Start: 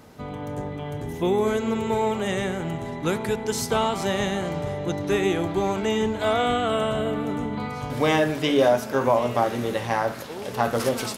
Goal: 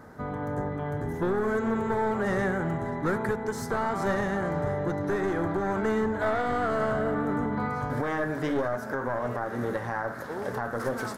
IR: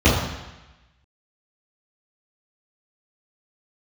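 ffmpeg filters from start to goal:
-af "aeval=exprs='clip(val(0),-1,0.0668)':channel_layout=same,highshelf=frequency=2100:width_type=q:width=3:gain=-8,alimiter=limit=-18dB:level=0:latency=1:release=293"

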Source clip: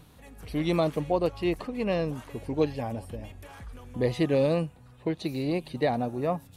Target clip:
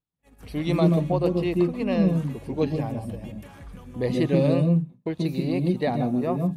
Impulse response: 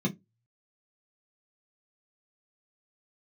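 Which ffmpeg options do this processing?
-filter_complex "[0:a]agate=range=-39dB:threshold=-46dB:ratio=16:detection=peak,asplit=2[link_01][link_02];[1:a]atrim=start_sample=2205,adelay=131[link_03];[link_02][link_03]afir=irnorm=-1:irlink=0,volume=-14.5dB[link_04];[link_01][link_04]amix=inputs=2:normalize=0"

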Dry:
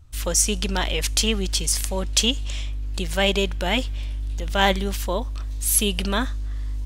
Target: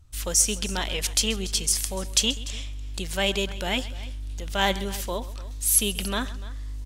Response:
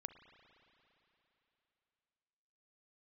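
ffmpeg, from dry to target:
-filter_complex "[0:a]equalizer=frequency=9900:width=0.36:gain=5,asplit=2[link_01][link_02];[link_02]aecho=0:1:132|294:0.126|0.119[link_03];[link_01][link_03]amix=inputs=2:normalize=0,volume=-5dB"

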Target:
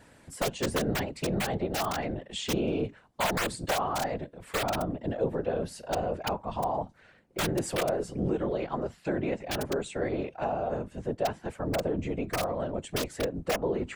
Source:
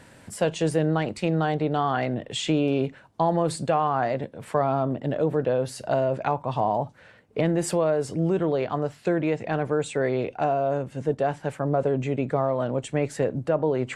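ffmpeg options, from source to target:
ffmpeg -i in.wav -af "aeval=exprs='(mod(4.47*val(0)+1,2)-1)/4.47':channel_layout=same,afftfilt=real='hypot(re,im)*cos(2*PI*random(0))':imag='hypot(re,im)*sin(2*PI*random(1))':win_size=512:overlap=0.75" out.wav

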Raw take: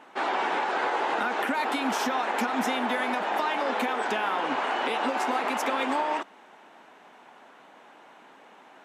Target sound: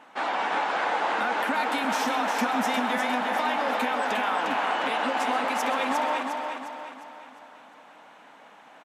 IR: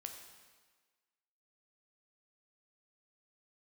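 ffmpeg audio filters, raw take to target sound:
-filter_complex "[0:a]equalizer=frequency=380:width=5.7:gain=-12.5,aecho=1:1:355|710|1065|1420|1775|2130:0.562|0.253|0.114|0.0512|0.0231|0.0104,asplit=2[link_01][link_02];[1:a]atrim=start_sample=2205,adelay=130[link_03];[link_02][link_03]afir=irnorm=-1:irlink=0,volume=-9.5dB[link_04];[link_01][link_04]amix=inputs=2:normalize=0"

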